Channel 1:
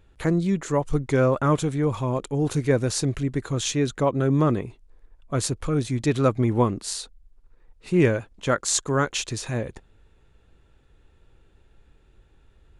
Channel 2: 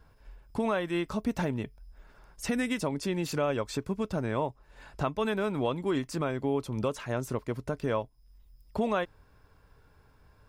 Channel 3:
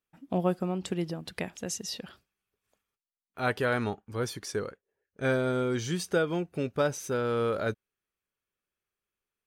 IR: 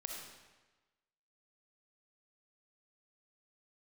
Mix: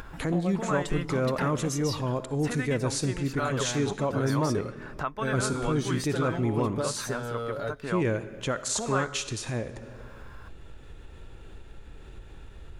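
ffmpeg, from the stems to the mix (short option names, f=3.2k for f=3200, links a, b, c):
-filter_complex "[0:a]alimiter=limit=-15dB:level=0:latency=1:release=27,volume=-6.5dB,asplit=2[a][b];[b]volume=-5.5dB[c];[1:a]equalizer=f=1.4k:t=o:w=1.4:g=12.5,volume=-8.5dB[d];[2:a]acompressor=threshold=-30dB:ratio=6,bandreject=f=2.4k:w=12,aecho=1:1:7.1:0.68,volume=-2dB,asplit=2[e][f];[f]volume=-17.5dB[g];[3:a]atrim=start_sample=2205[h];[c][g]amix=inputs=2:normalize=0[i];[i][h]afir=irnorm=-1:irlink=0[j];[a][d][e][j]amix=inputs=4:normalize=0,acompressor=mode=upward:threshold=-29dB:ratio=2.5"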